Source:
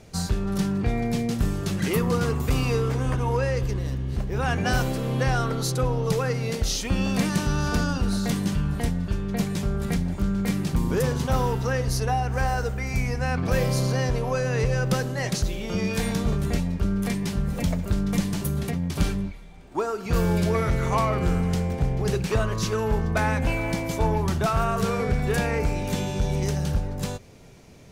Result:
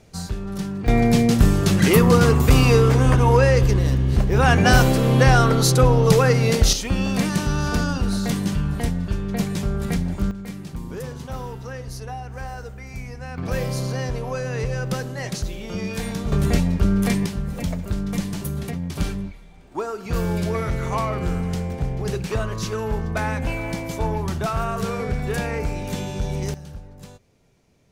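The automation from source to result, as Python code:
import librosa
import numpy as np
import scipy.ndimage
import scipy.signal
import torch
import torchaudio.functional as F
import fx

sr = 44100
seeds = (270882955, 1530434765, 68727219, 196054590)

y = fx.gain(x, sr, db=fx.steps((0.0, -3.0), (0.88, 9.0), (6.73, 2.0), (10.31, -8.5), (13.38, -2.0), (16.32, 6.0), (17.26, -1.0), (26.54, -12.5)))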